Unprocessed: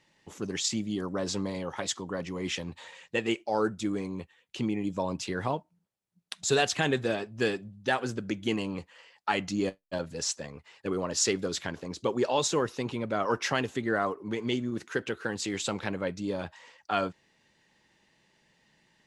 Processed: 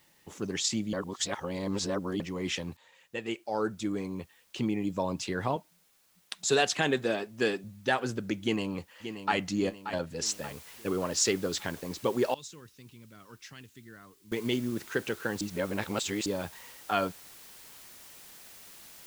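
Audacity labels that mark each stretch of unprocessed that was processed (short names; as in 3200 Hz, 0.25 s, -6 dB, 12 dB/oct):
0.930000	2.200000	reverse
2.770000	4.630000	fade in equal-power, from -16.5 dB
5.560000	7.640000	HPF 160 Hz
8.420000	9.360000	echo throw 0.58 s, feedback 50%, level -10 dB
10.260000	10.260000	noise floor step -67 dB -51 dB
12.340000	14.320000	passive tone stack bass-middle-treble 6-0-2
15.410000	16.260000	reverse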